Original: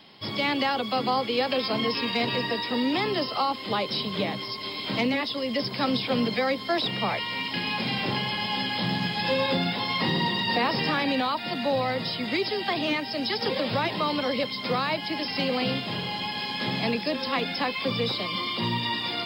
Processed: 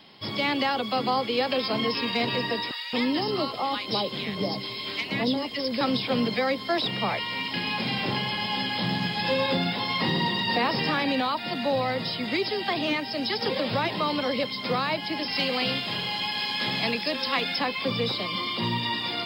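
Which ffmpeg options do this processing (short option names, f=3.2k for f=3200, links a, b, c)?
-filter_complex "[0:a]asettb=1/sr,asplit=3[a][b][c];[a]atrim=end=2.714[d];[b]atrim=start=2.71:end=5.81,asetpts=PTS-STARTPTS,afade=t=in:d=0.004:c=qsin,afade=t=out:st=3.096:d=0.004:c=qsin,acrossover=split=1200[e][f];[e]adelay=220[g];[g][f]amix=inputs=2:normalize=0,atrim=end_sample=136710[h];[c]atrim=start=5.806[i];[d][h]acrossfade=d=0.004:c1=hsin:c2=qsin[j];[j][i]acrossfade=d=0.004:c1=qsin:c2=hsin,asettb=1/sr,asplit=3[k][l][m];[k]atrim=end=15.314[n];[l]atrim=start=15.31:end=17.59,asetpts=PTS-STARTPTS,afade=t=in:d=0.004:c=qsin,afade=t=out:st=2.276:d=0.004:c=qsin,tiltshelf=f=910:g=-4[o];[m]atrim=start=17.586[p];[n][o]acrossfade=d=0.004:c1=hsin:c2=qsin[q];[q][p]acrossfade=d=0.004:c1=qsin:c2=hsin"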